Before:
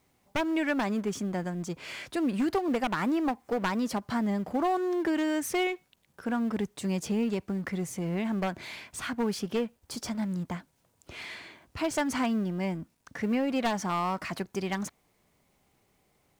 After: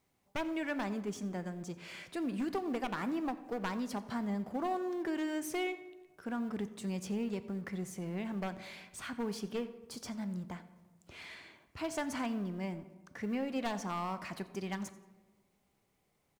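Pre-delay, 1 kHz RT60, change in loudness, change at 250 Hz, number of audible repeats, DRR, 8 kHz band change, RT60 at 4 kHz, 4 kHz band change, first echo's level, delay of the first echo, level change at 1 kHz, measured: 3 ms, 1.2 s, -7.5 dB, -7.5 dB, 1, 11.5 dB, -8.0 dB, 0.70 s, -8.0 dB, -19.5 dB, 88 ms, -7.5 dB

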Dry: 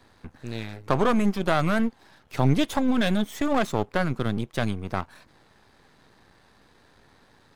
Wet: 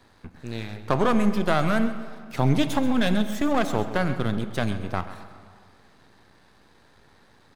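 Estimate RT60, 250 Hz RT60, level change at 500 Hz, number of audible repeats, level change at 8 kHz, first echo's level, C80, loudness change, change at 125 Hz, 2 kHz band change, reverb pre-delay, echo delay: 2.1 s, 2.0 s, +0.5 dB, 2, +0.5 dB, -14.0 dB, 10.5 dB, +0.5 dB, +0.5 dB, +0.5 dB, 11 ms, 133 ms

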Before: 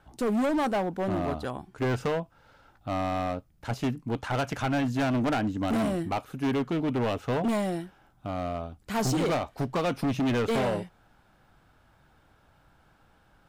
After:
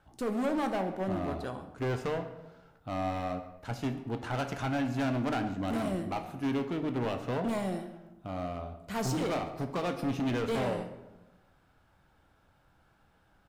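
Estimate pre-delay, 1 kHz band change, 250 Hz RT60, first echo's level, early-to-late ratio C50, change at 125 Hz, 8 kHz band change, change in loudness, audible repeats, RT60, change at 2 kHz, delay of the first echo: 9 ms, -4.5 dB, 1.3 s, -19.0 dB, 9.5 dB, -4.0 dB, -5.0 dB, -4.5 dB, 1, 1.0 s, -4.5 dB, 137 ms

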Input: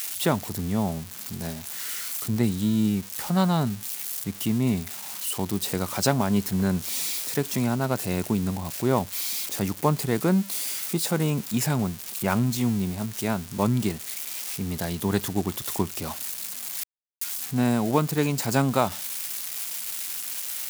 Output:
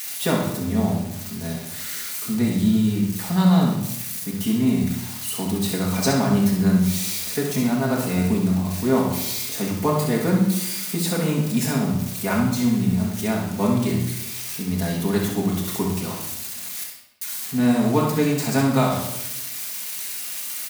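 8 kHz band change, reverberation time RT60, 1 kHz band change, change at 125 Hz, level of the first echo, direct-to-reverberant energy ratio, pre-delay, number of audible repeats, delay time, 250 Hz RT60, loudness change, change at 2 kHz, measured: +2.0 dB, 0.90 s, +2.0 dB, +4.0 dB, -6.5 dB, -4.0 dB, 4 ms, 1, 65 ms, 1.1 s, +4.0 dB, +3.5 dB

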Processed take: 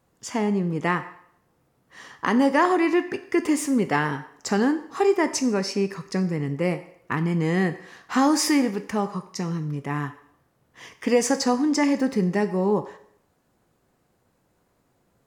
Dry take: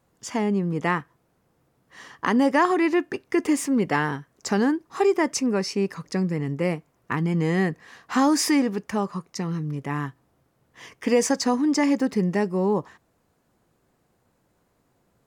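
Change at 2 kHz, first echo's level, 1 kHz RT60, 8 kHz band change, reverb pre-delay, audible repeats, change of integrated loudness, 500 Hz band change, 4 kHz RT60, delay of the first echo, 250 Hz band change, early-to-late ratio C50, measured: +0.5 dB, no echo, 0.65 s, +0.5 dB, 5 ms, no echo, +0.5 dB, +0.5 dB, 0.65 s, no echo, 0.0 dB, 13.5 dB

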